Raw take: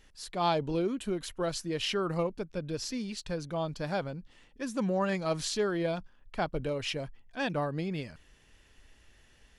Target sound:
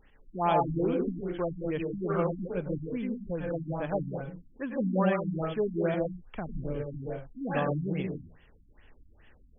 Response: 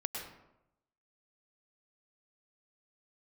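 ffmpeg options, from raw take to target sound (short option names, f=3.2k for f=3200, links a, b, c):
-filter_complex "[0:a]asettb=1/sr,asplit=3[a][b][c];[a]atrim=end=5.944[d];[b]atrim=start=5.94:end=6.93,asetpts=PTS-STARTPTS,afade=t=in:d=0.004:c=qsin,afade=t=out:st=0.986:d=0.004:c=qsin,acrossover=split=280[e][f];[f]acompressor=threshold=-39dB:ratio=6[g];[e][g]amix=inputs=2:normalize=0[h];[c]atrim=start=6.926[i];[d][h]acrossfade=d=0.004:c1=hsin:c2=qsin[j];[j][i]acrossfade=d=0.004:c1=qsin:c2=hsin[k];[1:a]atrim=start_sample=2205,afade=t=out:st=0.26:d=0.01,atrim=end_sample=11907[l];[k][l]afir=irnorm=-1:irlink=0,afftfilt=real='re*lt(b*sr/1024,280*pow(3500/280,0.5+0.5*sin(2*PI*2.4*pts/sr)))':imag='im*lt(b*sr/1024,280*pow(3500/280,0.5+0.5*sin(2*PI*2.4*pts/sr)))':win_size=1024:overlap=0.75,volume=2dB"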